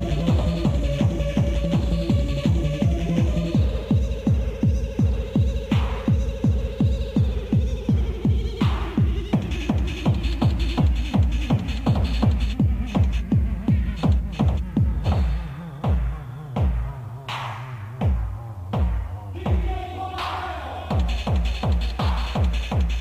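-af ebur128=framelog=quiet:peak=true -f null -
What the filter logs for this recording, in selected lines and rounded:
Integrated loudness:
  I:         -23.6 LUFS
  Threshold: -33.7 LUFS
Loudness range:
  LRA:         5.0 LU
  Threshold: -43.8 LUFS
  LRA low:   -27.4 LUFS
  LRA high:  -22.4 LUFS
True peak:
  Peak:       -7.0 dBFS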